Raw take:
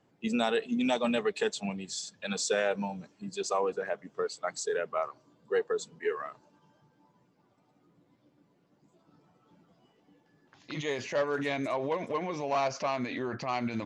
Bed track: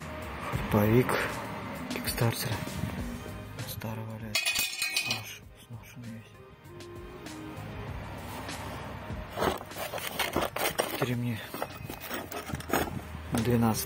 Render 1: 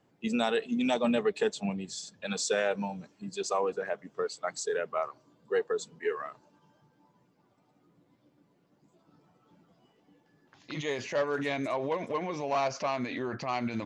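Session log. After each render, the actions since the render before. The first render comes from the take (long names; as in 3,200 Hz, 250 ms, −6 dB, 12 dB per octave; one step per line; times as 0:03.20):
0:00.94–0:02.27: tilt shelving filter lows +3 dB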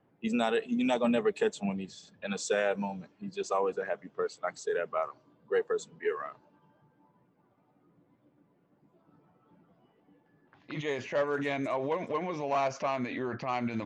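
low-pass that shuts in the quiet parts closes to 2,100 Hz, open at −25 dBFS
dynamic equaliser 4,600 Hz, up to −7 dB, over −54 dBFS, Q 1.8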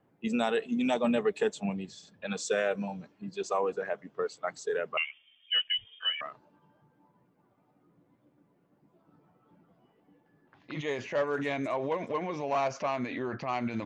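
0:02.37–0:02.88: Butterworth band-reject 880 Hz, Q 4.6
0:04.97–0:06.21: voice inversion scrambler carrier 3,400 Hz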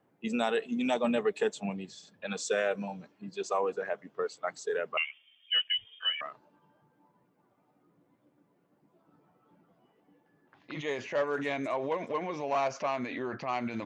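low-shelf EQ 140 Hz −8.5 dB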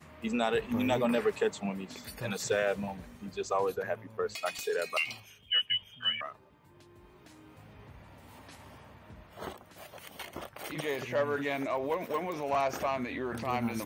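mix in bed track −13 dB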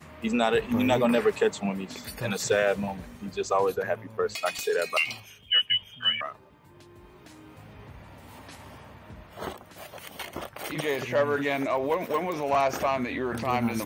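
level +5.5 dB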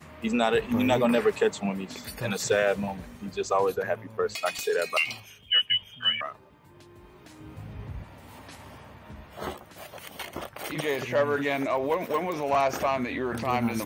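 0:07.40–0:08.04: low-shelf EQ 200 Hz +11.5 dB
0:09.04–0:09.66: double-tracking delay 14 ms −6 dB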